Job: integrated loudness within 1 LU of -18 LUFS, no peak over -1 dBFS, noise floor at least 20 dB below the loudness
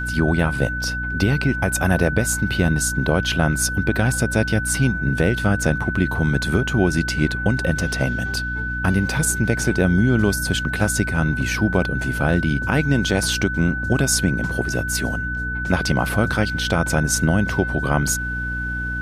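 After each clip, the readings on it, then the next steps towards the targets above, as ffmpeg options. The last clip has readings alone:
hum 60 Hz; highest harmonic 300 Hz; hum level -26 dBFS; steady tone 1.5 kHz; tone level -25 dBFS; loudness -20.5 LUFS; peak level -4.5 dBFS; loudness target -18.0 LUFS
-> -af "bandreject=f=60:t=h:w=6,bandreject=f=120:t=h:w=6,bandreject=f=180:t=h:w=6,bandreject=f=240:t=h:w=6,bandreject=f=300:t=h:w=6"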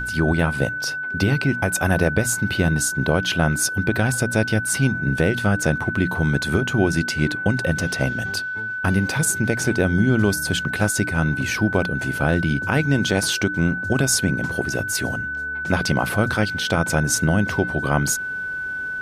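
hum not found; steady tone 1.5 kHz; tone level -25 dBFS
-> -af "bandreject=f=1500:w=30"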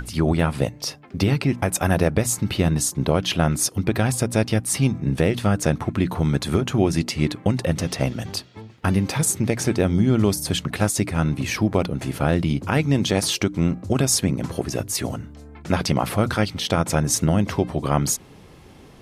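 steady tone not found; loudness -22.0 LUFS; peak level -6.0 dBFS; loudness target -18.0 LUFS
-> -af "volume=1.58"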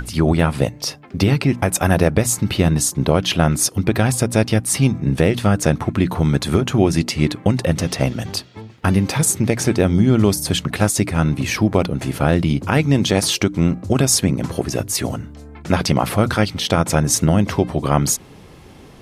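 loudness -18.0 LUFS; peak level -2.0 dBFS; noise floor -42 dBFS

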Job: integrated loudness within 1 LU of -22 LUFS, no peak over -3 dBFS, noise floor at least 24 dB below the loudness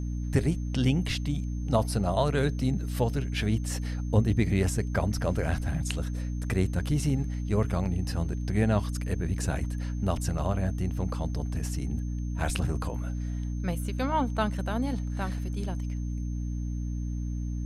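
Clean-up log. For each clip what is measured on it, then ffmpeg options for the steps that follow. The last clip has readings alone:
hum 60 Hz; highest harmonic 300 Hz; hum level -29 dBFS; steady tone 6.3 kHz; tone level -57 dBFS; loudness -29.5 LUFS; peak level -10.0 dBFS; loudness target -22.0 LUFS
-> -af "bandreject=f=60:t=h:w=4,bandreject=f=120:t=h:w=4,bandreject=f=180:t=h:w=4,bandreject=f=240:t=h:w=4,bandreject=f=300:t=h:w=4"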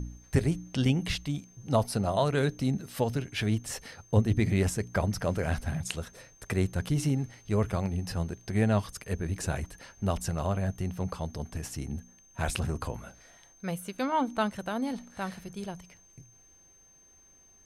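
hum not found; steady tone 6.3 kHz; tone level -57 dBFS
-> -af "bandreject=f=6300:w=30"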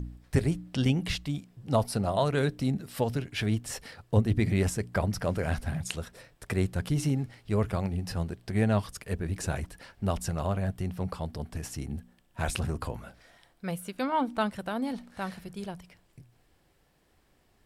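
steady tone not found; loudness -31.0 LUFS; peak level -11.0 dBFS; loudness target -22.0 LUFS
-> -af "volume=2.82,alimiter=limit=0.708:level=0:latency=1"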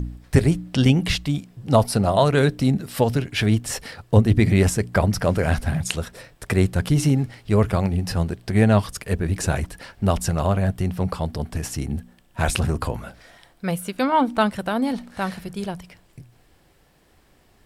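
loudness -22.0 LUFS; peak level -3.0 dBFS; noise floor -58 dBFS

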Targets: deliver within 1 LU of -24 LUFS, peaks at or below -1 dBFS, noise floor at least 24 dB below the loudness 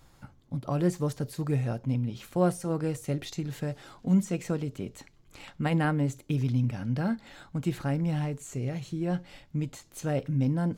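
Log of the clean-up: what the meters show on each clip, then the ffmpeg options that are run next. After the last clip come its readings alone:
loudness -30.5 LUFS; peak level -14.0 dBFS; loudness target -24.0 LUFS
-> -af "volume=2.11"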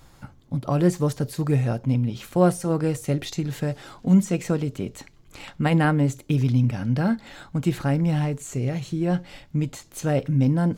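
loudness -24.0 LUFS; peak level -7.5 dBFS; noise floor -52 dBFS

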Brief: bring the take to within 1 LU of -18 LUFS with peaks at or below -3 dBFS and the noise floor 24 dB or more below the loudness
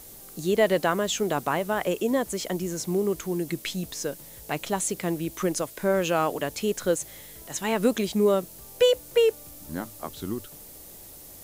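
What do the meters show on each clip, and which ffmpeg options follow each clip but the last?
noise floor -46 dBFS; noise floor target -51 dBFS; loudness -26.5 LUFS; peak level -10.0 dBFS; loudness target -18.0 LUFS
-> -af "afftdn=nr=6:nf=-46"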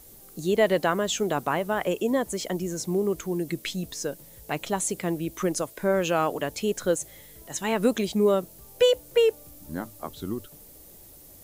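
noise floor -49 dBFS; noise floor target -51 dBFS
-> -af "afftdn=nr=6:nf=-49"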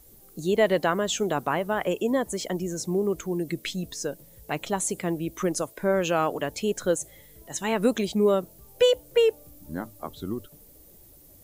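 noise floor -53 dBFS; loudness -26.5 LUFS; peak level -10.0 dBFS; loudness target -18.0 LUFS
-> -af "volume=2.66,alimiter=limit=0.708:level=0:latency=1"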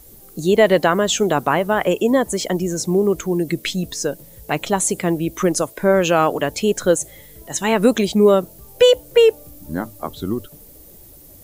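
loudness -18.5 LUFS; peak level -3.0 dBFS; noise floor -44 dBFS

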